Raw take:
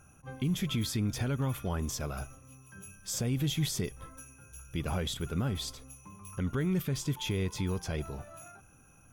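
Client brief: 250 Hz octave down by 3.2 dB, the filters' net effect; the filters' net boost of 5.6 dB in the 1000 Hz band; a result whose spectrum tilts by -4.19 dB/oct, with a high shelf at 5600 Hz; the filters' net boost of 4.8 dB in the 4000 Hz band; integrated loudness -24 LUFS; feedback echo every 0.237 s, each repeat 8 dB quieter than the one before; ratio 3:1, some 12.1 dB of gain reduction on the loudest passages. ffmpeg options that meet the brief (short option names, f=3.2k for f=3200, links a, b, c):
-af "equalizer=f=250:t=o:g=-5.5,equalizer=f=1k:t=o:g=7.5,equalizer=f=4k:t=o:g=8.5,highshelf=f=5.6k:g=-8,acompressor=threshold=-45dB:ratio=3,aecho=1:1:237|474|711|948|1185:0.398|0.159|0.0637|0.0255|0.0102,volume=21dB"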